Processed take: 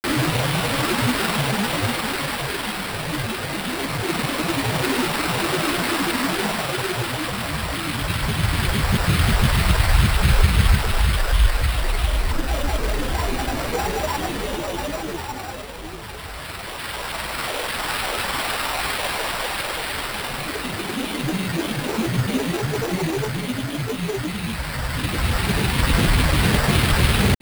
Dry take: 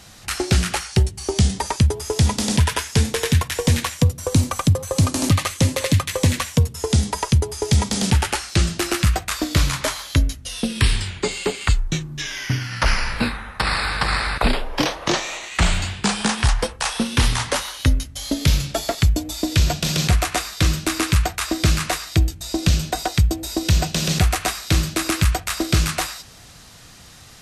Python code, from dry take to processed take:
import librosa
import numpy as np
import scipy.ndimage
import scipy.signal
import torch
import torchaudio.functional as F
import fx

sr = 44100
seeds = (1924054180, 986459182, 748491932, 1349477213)

y = fx.rattle_buzz(x, sr, strikes_db=-16.0, level_db=-12.0)
y = fx.paulstretch(y, sr, seeds[0], factor=23.0, window_s=0.25, from_s=16.04)
y = fx.granulator(y, sr, seeds[1], grain_ms=100.0, per_s=20.0, spray_ms=100.0, spread_st=12)
y = fx.sample_hold(y, sr, seeds[2], rate_hz=6500.0, jitter_pct=0)